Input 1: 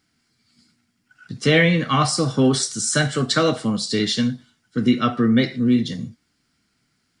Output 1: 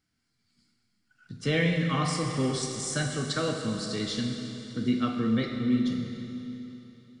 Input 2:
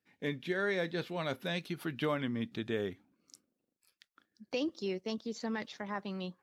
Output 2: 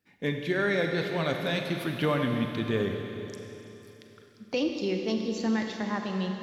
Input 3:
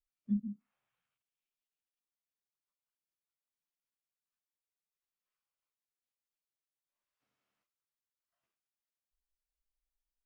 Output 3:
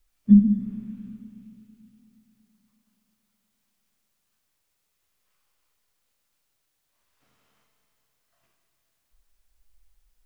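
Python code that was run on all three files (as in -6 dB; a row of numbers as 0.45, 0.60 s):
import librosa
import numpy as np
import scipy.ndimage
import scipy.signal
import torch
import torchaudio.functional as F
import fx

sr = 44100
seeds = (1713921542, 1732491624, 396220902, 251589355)

y = fx.low_shelf(x, sr, hz=89.0, db=10.5)
y = fx.rev_schroeder(y, sr, rt60_s=3.4, comb_ms=32, drr_db=3.0)
y = y * 10.0 ** (-30 / 20.0) / np.sqrt(np.mean(np.square(y)))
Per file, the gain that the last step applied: -12.0, +5.0, +16.5 dB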